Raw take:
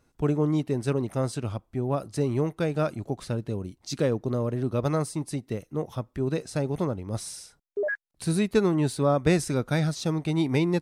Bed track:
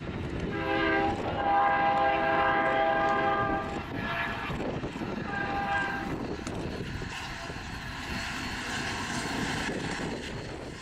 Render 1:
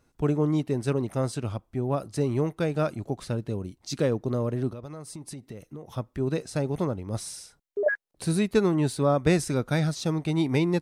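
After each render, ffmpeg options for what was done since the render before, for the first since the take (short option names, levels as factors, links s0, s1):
-filter_complex "[0:a]asettb=1/sr,asplit=3[s0][s1][s2];[s0]atrim=end=4.704[s3];[s1]atrim=start=4.7:end=5.93,asetpts=PTS-STARTPTS,afade=t=in:d=0.004:c=qsin,afade=t=out:st=1.226:d=0.004:c=qsin,acompressor=threshold=0.0178:ratio=16:attack=3.2:release=140:knee=1:detection=peak[s4];[s2]atrim=start=5.926[s5];[s3][s4]acrossfade=d=0.004:c1=hsin:c2=qsin[s6];[s6][s5]acrossfade=d=0.004:c1=qsin:c2=hsin,asettb=1/sr,asplit=3[s7][s8][s9];[s7]atrim=end=7.864[s10];[s8]atrim=start=7.86:end=8.26,asetpts=PTS-STARTPTS,afade=t=in:d=0.004:c=qsin,afade=t=out:st=0.396:d=0.004:c=qsin,equalizer=f=470:t=o:w=1.8:g=10[s11];[s9]atrim=start=8.256[s12];[s10][s11]acrossfade=d=0.004:c1=hsin:c2=qsin[s13];[s13][s12]acrossfade=d=0.004:c1=qsin:c2=hsin"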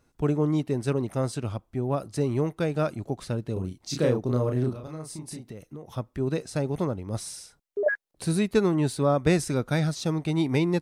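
-filter_complex "[0:a]asettb=1/sr,asplit=3[s0][s1][s2];[s0]atrim=end=3.534[s3];[s1]atrim=start=3.53:end=5.5,asetpts=PTS-STARTPTS,afade=t=in:d=0.004:c=qsin,afade=t=out:st=1.966:d=0.004:c=qsin,asplit=2[s4][s5];[s5]adelay=32,volume=0.708[s6];[s4][s6]amix=inputs=2:normalize=0,atrim=end_sample=86877[s7];[s2]atrim=start=5.496[s8];[s3][s7]acrossfade=d=0.004:c1=hsin:c2=qsin[s9];[s9][s8]acrossfade=d=0.004:c1=qsin:c2=hsin"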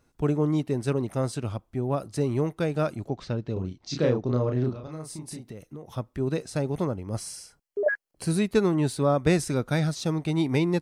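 -filter_complex "[0:a]asettb=1/sr,asplit=3[s0][s1][s2];[s0]atrim=end=3.084[s3];[s1]atrim=start=3.08:end=4.92,asetpts=PTS-STARTPTS,afade=t=in:d=0.004:c=qsin,afade=t=out:st=1.836:d=0.004:c=qsin,lowpass=f=5900:w=0.5412,lowpass=f=5900:w=1.3066[s4];[s2]atrim=start=4.916[s5];[s3][s4]acrossfade=d=0.004:c1=hsin:c2=qsin[s6];[s6][s5]acrossfade=d=0.004:c1=qsin:c2=hsin,asettb=1/sr,asplit=3[s7][s8][s9];[s7]atrim=end=6.864[s10];[s8]atrim=start=6.86:end=8.31,asetpts=PTS-STARTPTS,afade=t=in:d=0.004:c=qsin,afade=t=out:st=1.446:d=0.004:c=qsin,asuperstop=centerf=3700:order=4:qfactor=6.9[s11];[s9]atrim=start=8.306[s12];[s10][s11]acrossfade=d=0.004:c1=hsin:c2=qsin[s13];[s13][s12]acrossfade=d=0.004:c1=qsin:c2=hsin"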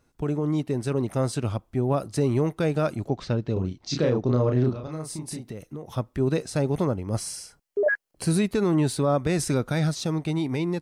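-af "alimiter=limit=0.133:level=0:latency=1:release=46,dynaudnorm=f=110:g=17:m=1.58"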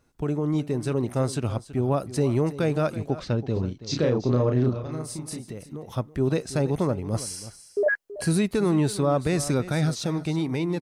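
-af "aecho=1:1:328:0.178"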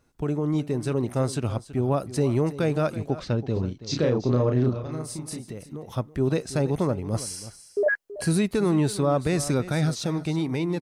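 -af anull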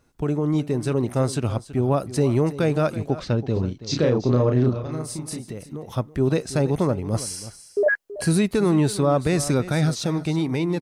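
-af "volume=1.41"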